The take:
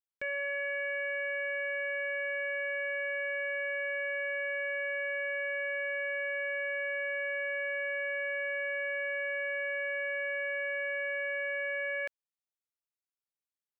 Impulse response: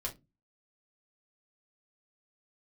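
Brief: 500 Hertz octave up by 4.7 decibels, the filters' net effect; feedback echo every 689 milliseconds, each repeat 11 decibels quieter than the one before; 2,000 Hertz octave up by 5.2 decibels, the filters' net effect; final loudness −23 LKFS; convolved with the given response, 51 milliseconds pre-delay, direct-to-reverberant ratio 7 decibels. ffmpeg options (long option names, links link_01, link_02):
-filter_complex "[0:a]equalizer=frequency=500:width_type=o:gain=5,equalizer=frequency=2000:width_type=o:gain=6,aecho=1:1:689|1378|2067:0.282|0.0789|0.0221,asplit=2[link_01][link_02];[1:a]atrim=start_sample=2205,adelay=51[link_03];[link_02][link_03]afir=irnorm=-1:irlink=0,volume=-8dB[link_04];[link_01][link_04]amix=inputs=2:normalize=0,volume=3dB"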